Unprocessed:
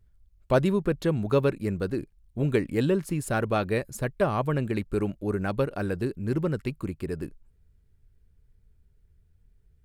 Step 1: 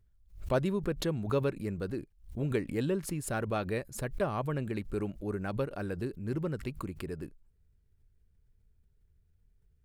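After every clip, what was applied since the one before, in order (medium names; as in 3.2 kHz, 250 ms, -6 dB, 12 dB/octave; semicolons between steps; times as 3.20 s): swell ahead of each attack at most 130 dB/s; trim -7 dB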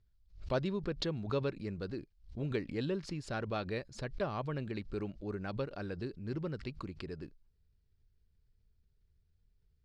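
four-pole ladder low-pass 5.5 kHz, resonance 50%; trim +5 dB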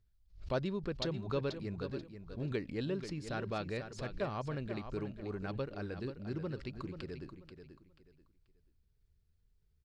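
feedback delay 485 ms, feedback 26%, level -9.5 dB; trim -1.5 dB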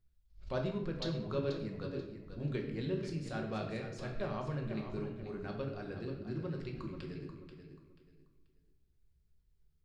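simulated room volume 250 m³, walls mixed, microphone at 0.98 m; trim -4 dB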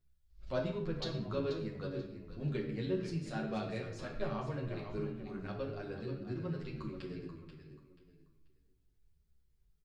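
endless flanger 9.7 ms -1.2 Hz; trim +3 dB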